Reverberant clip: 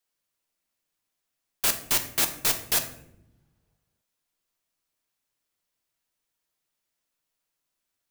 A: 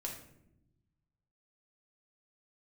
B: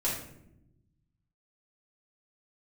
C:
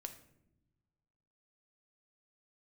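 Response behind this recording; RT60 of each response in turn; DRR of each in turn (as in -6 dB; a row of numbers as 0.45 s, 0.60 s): C; 0.80 s, 0.80 s, no single decay rate; -1.5 dB, -8.0 dB, 6.0 dB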